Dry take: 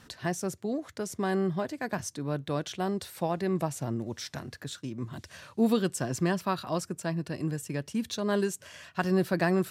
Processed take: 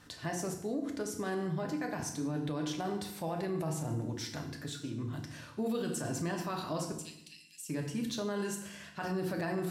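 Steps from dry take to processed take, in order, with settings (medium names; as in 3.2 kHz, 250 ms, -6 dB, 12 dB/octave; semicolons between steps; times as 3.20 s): 6.92–7.69 s: steep high-pass 2.4 kHz 48 dB/octave; FDN reverb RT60 0.72 s, low-frequency decay 1.5×, high-frequency decay 0.95×, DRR 2 dB; peak limiter -22.5 dBFS, peak gain reduction 10.5 dB; trim -4 dB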